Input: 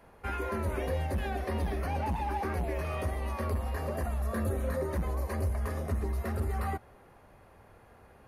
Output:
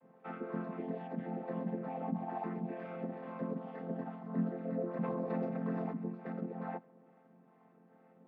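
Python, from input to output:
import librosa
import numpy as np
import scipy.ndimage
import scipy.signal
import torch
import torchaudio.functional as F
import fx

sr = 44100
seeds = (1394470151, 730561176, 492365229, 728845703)

y = fx.chord_vocoder(x, sr, chord='major triad', root=53)
y = fx.high_shelf(y, sr, hz=3900.0, db=-7.5, at=(1.08, 2.29))
y = fx.harmonic_tremolo(y, sr, hz=2.3, depth_pct=50, crossover_hz=490.0)
y = fx.air_absorb(y, sr, metres=320.0)
y = fx.env_flatten(y, sr, amount_pct=50, at=(4.97, 5.89), fade=0.02)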